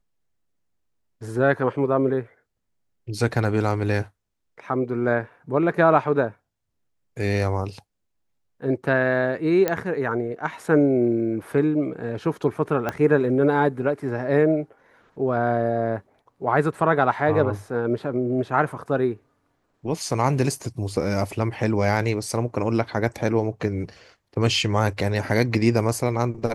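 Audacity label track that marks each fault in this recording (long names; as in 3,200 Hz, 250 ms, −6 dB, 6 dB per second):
9.680000	9.680000	click −8 dBFS
12.890000	12.890000	click −12 dBFS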